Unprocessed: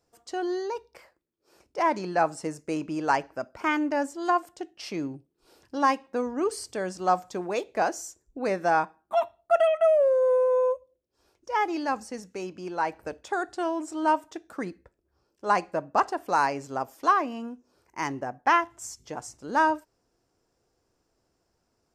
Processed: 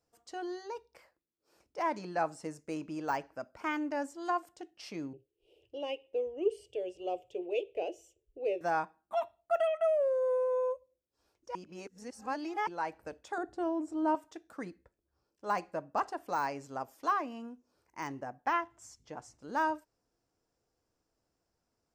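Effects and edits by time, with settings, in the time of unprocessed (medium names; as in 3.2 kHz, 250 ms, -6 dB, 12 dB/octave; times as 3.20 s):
5.13–8.61 s: FFT filter 120 Hz 0 dB, 210 Hz -26 dB, 390 Hz +9 dB, 590 Hz +2 dB, 1.1 kHz -24 dB, 1.6 kHz -28 dB, 2.9 kHz +11 dB, 4.2 kHz -15 dB
11.55–12.67 s: reverse
13.38–14.15 s: tilt shelf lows +8.5 dB, about 870 Hz
18.53–19.42 s: treble shelf 7.2 kHz -12 dB
whole clip: de-esser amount 85%; band-stop 380 Hz, Q 12; trim -8 dB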